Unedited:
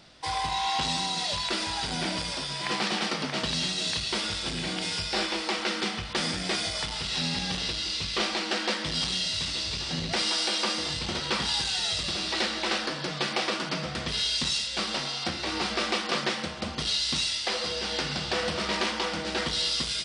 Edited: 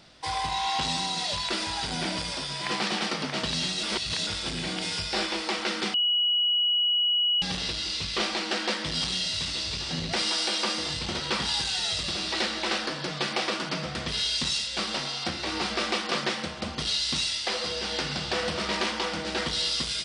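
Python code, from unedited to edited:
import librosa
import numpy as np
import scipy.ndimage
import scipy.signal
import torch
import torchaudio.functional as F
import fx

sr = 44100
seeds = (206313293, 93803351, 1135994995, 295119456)

y = fx.edit(x, sr, fx.reverse_span(start_s=3.83, length_s=0.44),
    fx.bleep(start_s=5.94, length_s=1.48, hz=2920.0, db=-21.0), tone=tone)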